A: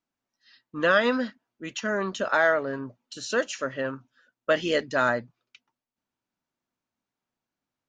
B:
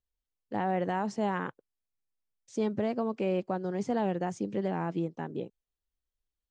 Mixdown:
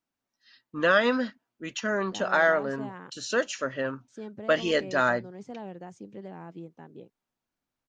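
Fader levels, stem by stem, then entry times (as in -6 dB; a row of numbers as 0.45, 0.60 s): -0.5, -10.5 dB; 0.00, 1.60 s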